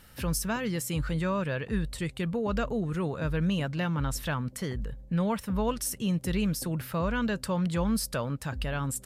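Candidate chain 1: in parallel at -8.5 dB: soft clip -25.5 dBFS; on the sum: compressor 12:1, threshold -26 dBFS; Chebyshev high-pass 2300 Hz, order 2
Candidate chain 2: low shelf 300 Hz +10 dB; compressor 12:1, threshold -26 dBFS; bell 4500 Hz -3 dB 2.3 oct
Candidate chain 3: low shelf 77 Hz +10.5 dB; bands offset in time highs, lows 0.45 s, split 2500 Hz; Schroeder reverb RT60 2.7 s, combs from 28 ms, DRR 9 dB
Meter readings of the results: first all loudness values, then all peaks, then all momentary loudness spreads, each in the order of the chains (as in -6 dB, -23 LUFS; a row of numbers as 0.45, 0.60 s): -39.5, -31.5, -28.5 LUFS; -18.5, -18.5, -14.0 dBFS; 12, 2, 5 LU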